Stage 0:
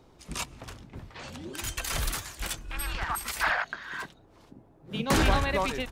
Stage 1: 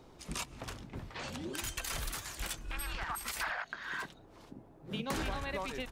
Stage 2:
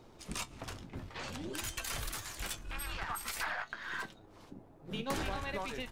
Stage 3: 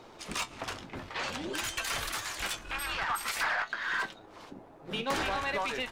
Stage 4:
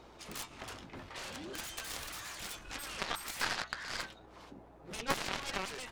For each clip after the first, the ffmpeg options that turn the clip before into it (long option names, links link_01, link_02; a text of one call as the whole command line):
ffmpeg -i in.wav -af "equalizer=frequency=77:width_type=o:width=1.4:gain=-3,acompressor=threshold=-37dB:ratio=4,volume=1dB" out.wav
ffmpeg -i in.wav -af "aeval=exprs='if(lt(val(0),0),0.708*val(0),val(0))':channel_layout=same,flanger=delay=8.6:depth=2.9:regen=64:speed=0.51:shape=triangular,volume=5dB" out.wav
ffmpeg -i in.wav -filter_complex "[0:a]asplit=2[link_01][link_02];[link_02]highpass=frequency=720:poles=1,volume=15dB,asoftclip=type=tanh:threshold=-22dB[link_03];[link_01][link_03]amix=inputs=2:normalize=0,lowpass=frequency=4000:poles=1,volume=-6dB,volume=1.5dB" out.wav
ffmpeg -i in.wav -af "aeval=exprs='0.0891*(cos(1*acos(clip(val(0)/0.0891,-1,1)))-cos(1*PI/2))+0.0398*(cos(3*acos(clip(val(0)/0.0891,-1,1)))-cos(3*PI/2))':channel_layout=same,aeval=exprs='val(0)+0.000447*(sin(2*PI*60*n/s)+sin(2*PI*2*60*n/s)/2+sin(2*PI*3*60*n/s)/3+sin(2*PI*4*60*n/s)/4+sin(2*PI*5*60*n/s)/5)':channel_layout=same,volume=5dB" out.wav